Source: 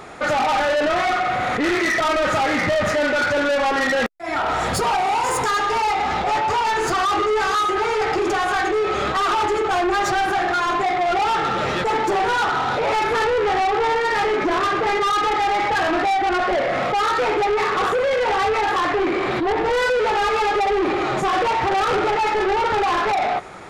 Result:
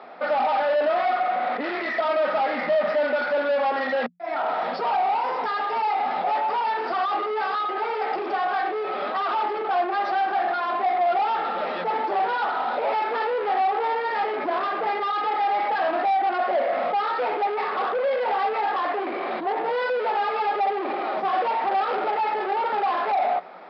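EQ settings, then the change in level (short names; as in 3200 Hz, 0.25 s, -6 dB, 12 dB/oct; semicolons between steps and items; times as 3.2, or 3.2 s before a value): rippled Chebyshev high-pass 170 Hz, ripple 9 dB; steep low-pass 5200 Hz 96 dB/oct; tone controls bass -9 dB, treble -4 dB; 0.0 dB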